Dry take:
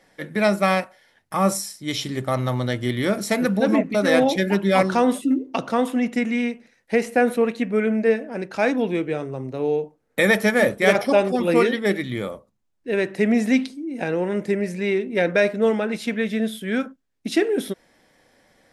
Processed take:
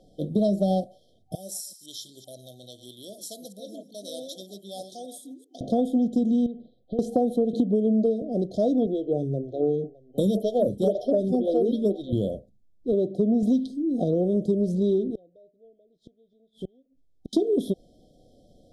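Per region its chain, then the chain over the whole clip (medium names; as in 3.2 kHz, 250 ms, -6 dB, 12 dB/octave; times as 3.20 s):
1.35–5.61 s: chunks repeated in reverse 128 ms, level -12 dB + differentiator
6.46–6.99 s: steep low-pass 4 kHz 48 dB/octave + compression 4:1, threshold -33 dBFS
7.53–8.22 s: high-pass 120 Hz + three bands compressed up and down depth 100%
8.86–12.13 s: delay 612 ms -19.5 dB + lamp-driven phase shifter 2 Hz
12.92–13.43 s: high-pass 160 Hz 6 dB/octave + treble shelf 2.3 kHz -10 dB
15.10–17.33 s: low-pass that closes with the level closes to 2.2 kHz, closed at -15 dBFS + peaking EQ 210 Hz -14 dB 0.34 oct + inverted gate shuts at -25 dBFS, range -37 dB
whole clip: FFT band-reject 760–3100 Hz; tilt EQ -2.5 dB/octave; compression, threshold -19 dBFS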